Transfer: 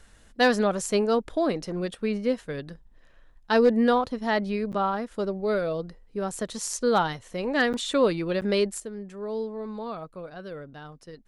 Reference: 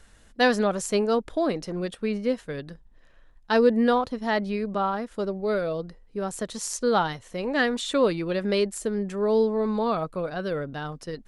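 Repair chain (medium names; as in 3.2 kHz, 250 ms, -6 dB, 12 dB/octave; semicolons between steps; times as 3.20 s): clip repair -12 dBFS; interpolate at 4.72/7.73/8.41 s, 8.7 ms; trim 0 dB, from 8.80 s +9.5 dB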